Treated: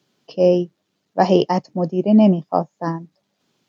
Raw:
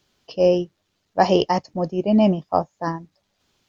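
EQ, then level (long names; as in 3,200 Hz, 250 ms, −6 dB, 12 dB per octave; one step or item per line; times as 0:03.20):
high-pass filter 140 Hz 24 dB per octave
low-shelf EQ 490 Hz +8 dB
−2.0 dB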